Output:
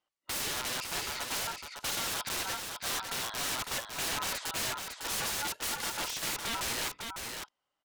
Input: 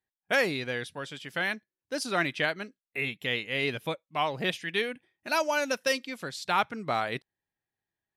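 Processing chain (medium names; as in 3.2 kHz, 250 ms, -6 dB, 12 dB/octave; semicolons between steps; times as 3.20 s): low-pass 7.5 kHz 12 dB/octave; bass shelf 83 Hz +3 dB; in parallel at +2.5 dB: peak limiter -25 dBFS, peak gain reduction 11.5 dB; on the sum: ring modulator 1.1 kHz; integer overflow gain 27.5 dB; delay 577 ms -5.5 dB; speed mistake 24 fps film run at 25 fps; loudspeaker Doppler distortion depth 0.15 ms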